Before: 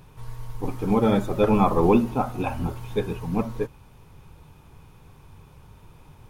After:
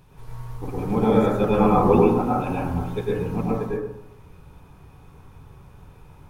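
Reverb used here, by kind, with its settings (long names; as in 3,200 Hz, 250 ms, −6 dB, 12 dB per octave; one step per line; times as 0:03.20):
dense smooth reverb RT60 0.79 s, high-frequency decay 0.25×, pre-delay 90 ms, DRR −5 dB
level −4.5 dB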